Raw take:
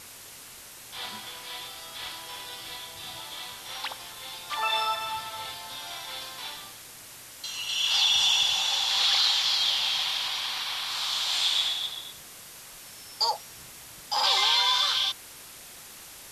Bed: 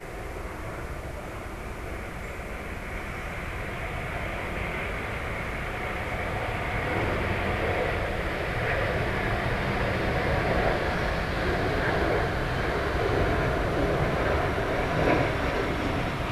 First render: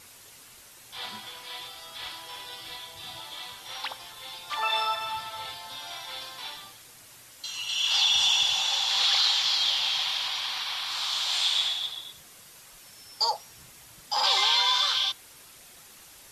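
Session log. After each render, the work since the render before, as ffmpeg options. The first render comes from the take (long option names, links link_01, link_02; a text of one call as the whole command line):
ffmpeg -i in.wav -af "afftdn=noise_reduction=6:noise_floor=-46" out.wav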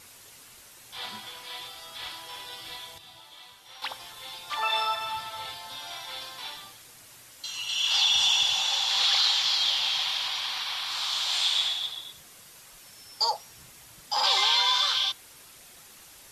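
ffmpeg -i in.wav -filter_complex "[0:a]asplit=3[link_01][link_02][link_03];[link_01]atrim=end=2.982[link_04];[link_02]atrim=start=2.978:end=3.822,asetpts=PTS-STARTPTS,volume=-9dB[link_05];[link_03]atrim=start=3.818[link_06];[link_04][link_05]acrossfade=duration=0.004:curve1=hsin:curve2=hsin[link_07];[link_07][link_06]acrossfade=duration=0.004:curve1=hsin:curve2=hsin" out.wav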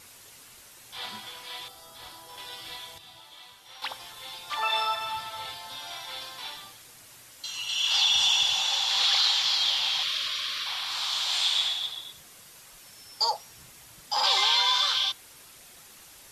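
ffmpeg -i in.wav -filter_complex "[0:a]asettb=1/sr,asplit=3[link_01][link_02][link_03];[link_01]atrim=end=1.684[link_04];[link_02]atrim=start=1.68:end=2.38,asetpts=PTS-STARTPTS,afade=type=in:duration=0.004:curve=qsin,afade=type=out:start_time=0.696:duration=0.004:curve=qsin,equalizer=frequency=2600:width=0.67:gain=-10.5[link_05];[link_03]atrim=start=2.376[link_06];[link_04][link_05]acrossfade=duration=0.004:curve1=hsin:curve2=qsin[link_07];[link_07][link_06]acrossfade=duration=0.004:curve1=qsin:curve2=hsin,asettb=1/sr,asplit=3[link_08][link_09][link_10];[link_08]atrim=end=10.034[link_11];[link_09]atrim=start=10.03:end=10.66,asetpts=PTS-STARTPTS,afade=type=in:duration=0.004:curve=qsin,afade=type=out:start_time=0.626:duration=0.004:curve=qsin,asuperstop=centerf=850:order=20:qfactor=2.5[link_12];[link_10]atrim=start=10.656[link_13];[link_11][link_12]acrossfade=duration=0.004:curve1=hsin:curve2=qsin[link_14];[link_14][link_13]acrossfade=duration=0.004:curve1=qsin:curve2=hsin" out.wav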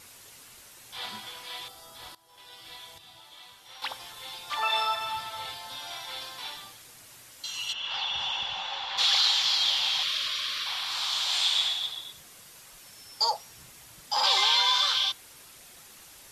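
ffmpeg -i in.wav -filter_complex "[0:a]asplit=3[link_01][link_02][link_03];[link_01]afade=type=out:start_time=7.72:duration=0.02[link_04];[link_02]lowpass=2100,afade=type=in:start_time=7.72:duration=0.02,afade=type=out:start_time=8.97:duration=0.02[link_05];[link_03]afade=type=in:start_time=8.97:duration=0.02[link_06];[link_04][link_05][link_06]amix=inputs=3:normalize=0,asplit=2[link_07][link_08];[link_07]atrim=end=2.15,asetpts=PTS-STARTPTS,afade=type=out:start_time=2.146:duration=0.004:curve=hsin:silence=0.11885[link_09];[link_08]atrim=start=2.15,asetpts=PTS-STARTPTS,afade=type=in:duration=1.73:curve=qsin:silence=0.11885[link_10];[link_09][link_10]concat=n=2:v=0:a=1" out.wav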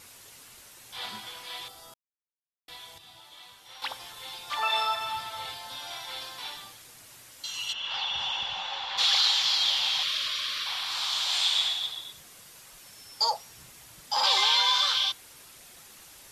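ffmpeg -i in.wav -filter_complex "[0:a]asplit=3[link_01][link_02][link_03];[link_01]atrim=end=1.94,asetpts=PTS-STARTPTS,afade=type=out:start_time=1.936:duration=0.004:curve=hsin[link_04];[link_02]atrim=start=1.94:end=2.68,asetpts=PTS-STARTPTS,volume=0[link_05];[link_03]atrim=start=2.68,asetpts=PTS-STARTPTS,afade=type=in:duration=0.004:curve=hsin[link_06];[link_04][link_05][link_06]concat=n=3:v=0:a=1" out.wav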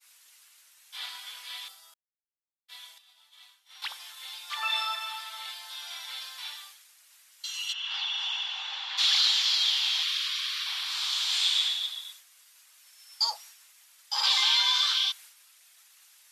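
ffmpeg -i in.wav -af "agate=range=-33dB:threshold=-44dB:ratio=3:detection=peak,highpass=1400" out.wav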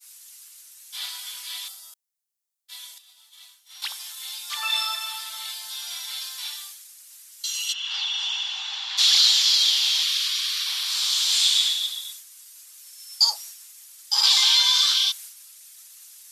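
ffmpeg -i in.wav -af "bass=frequency=250:gain=-10,treble=frequency=4000:gain=13" out.wav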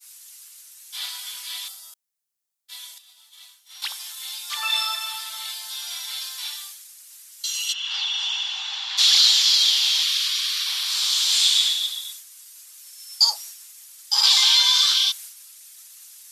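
ffmpeg -i in.wav -af "volume=1.5dB" out.wav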